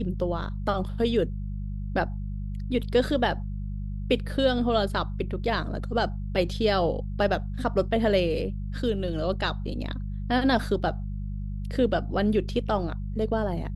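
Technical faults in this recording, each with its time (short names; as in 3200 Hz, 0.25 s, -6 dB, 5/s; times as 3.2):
hum 50 Hz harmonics 4 -32 dBFS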